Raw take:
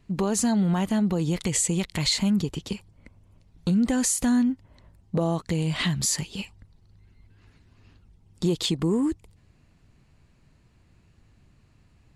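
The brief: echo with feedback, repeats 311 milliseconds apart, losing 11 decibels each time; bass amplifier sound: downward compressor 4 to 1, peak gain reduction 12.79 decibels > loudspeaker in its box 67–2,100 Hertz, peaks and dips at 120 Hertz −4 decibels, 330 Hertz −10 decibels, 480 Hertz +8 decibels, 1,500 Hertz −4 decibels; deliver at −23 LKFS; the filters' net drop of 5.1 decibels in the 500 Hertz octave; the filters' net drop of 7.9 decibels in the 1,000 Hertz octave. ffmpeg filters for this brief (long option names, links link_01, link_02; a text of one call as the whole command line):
ffmpeg -i in.wav -af "equalizer=frequency=500:width_type=o:gain=-7,equalizer=frequency=1000:width_type=o:gain=-7.5,aecho=1:1:311|622|933:0.282|0.0789|0.0221,acompressor=threshold=-35dB:ratio=4,highpass=frequency=67:width=0.5412,highpass=frequency=67:width=1.3066,equalizer=frequency=120:width_type=q:width=4:gain=-4,equalizer=frequency=330:width_type=q:width=4:gain=-10,equalizer=frequency=480:width_type=q:width=4:gain=8,equalizer=frequency=1500:width_type=q:width=4:gain=-4,lowpass=frequency=2100:width=0.5412,lowpass=frequency=2100:width=1.3066,volume=16.5dB" out.wav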